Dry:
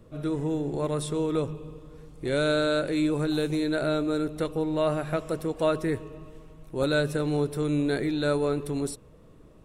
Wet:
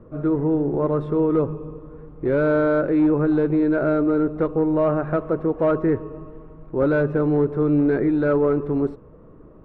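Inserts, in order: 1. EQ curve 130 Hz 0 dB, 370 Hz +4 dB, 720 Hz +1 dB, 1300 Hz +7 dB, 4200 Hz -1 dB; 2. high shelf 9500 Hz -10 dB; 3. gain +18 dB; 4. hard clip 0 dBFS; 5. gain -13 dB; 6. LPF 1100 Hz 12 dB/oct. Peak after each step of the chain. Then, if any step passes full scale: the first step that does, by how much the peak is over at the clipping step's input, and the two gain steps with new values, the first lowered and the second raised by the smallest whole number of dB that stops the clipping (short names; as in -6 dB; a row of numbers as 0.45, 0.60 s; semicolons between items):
-9.5, -9.5, +8.5, 0.0, -13.0, -12.5 dBFS; step 3, 8.5 dB; step 3 +9 dB, step 5 -4 dB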